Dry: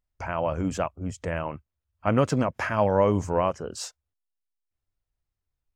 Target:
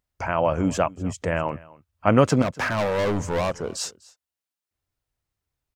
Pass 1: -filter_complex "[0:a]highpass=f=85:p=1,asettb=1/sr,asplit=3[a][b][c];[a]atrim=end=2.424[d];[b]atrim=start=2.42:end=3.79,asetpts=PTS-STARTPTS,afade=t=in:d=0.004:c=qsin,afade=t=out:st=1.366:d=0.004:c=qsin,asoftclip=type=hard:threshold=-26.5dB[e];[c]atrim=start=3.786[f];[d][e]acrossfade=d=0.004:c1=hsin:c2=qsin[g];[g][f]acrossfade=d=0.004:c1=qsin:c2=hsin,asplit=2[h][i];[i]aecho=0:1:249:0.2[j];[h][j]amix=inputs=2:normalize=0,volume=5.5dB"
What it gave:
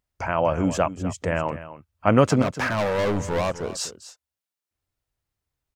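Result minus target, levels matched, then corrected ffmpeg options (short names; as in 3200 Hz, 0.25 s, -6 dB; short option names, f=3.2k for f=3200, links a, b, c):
echo-to-direct +8 dB
-filter_complex "[0:a]highpass=f=85:p=1,asettb=1/sr,asplit=3[a][b][c];[a]atrim=end=2.424[d];[b]atrim=start=2.42:end=3.79,asetpts=PTS-STARTPTS,afade=t=in:d=0.004:c=qsin,afade=t=out:st=1.366:d=0.004:c=qsin,asoftclip=type=hard:threshold=-26.5dB[e];[c]atrim=start=3.786[f];[d][e]acrossfade=d=0.004:c1=hsin:c2=qsin[g];[g][f]acrossfade=d=0.004:c1=qsin:c2=hsin,asplit=2[h][i];[i]aecho=0:1:249:0.0794[j];[h][j]amix=inputs=2:normalize=0,volume=5.5dB"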